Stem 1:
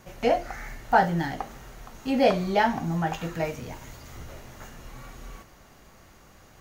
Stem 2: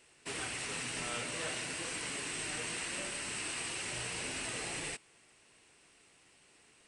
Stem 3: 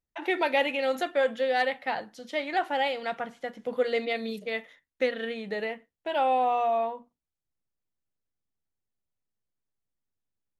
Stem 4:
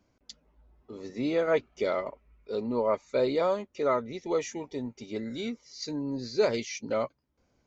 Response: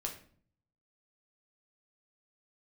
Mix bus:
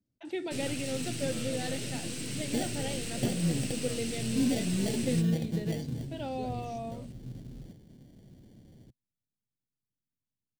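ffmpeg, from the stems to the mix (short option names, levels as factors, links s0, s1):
-filter_complex "[0:a]acompressor=threshold=0.0562:ratio=6,acrusher=samples=34:mix=1:aa=0.000001,adelay=2300,volume=0.398[s0];[1:a]aeval=exprs='(tanh(70.8*val(0)+0.7)-tanh(0.7))/70.8':c=same,adelay=250,volume=1.19,asplit=2[s1][s2];[s2]volume=0.447[s3];[2:a]adelay=50,volume=0.355[s4];[3:a]asubboost=boost=9:cutoff=94,volume=0.1[s5];[4:a]atrim=start_sample=2205[s6];[s3][s6]afir=irnorm=-1:irlink=0[s7];[s0][s1][s4][s5][s7]amix=inputs=5:normalize=0,equalizer=f=125:t=o:w=1:g=12,equalizer=f=250:t=o:w=1:g=9,equalizer=f=1000:t=o:w=1:g=-12,equalizer=f=2000:t=o:w=1:g=-5,equalizer=f=4000:t=o:w=1:g=3"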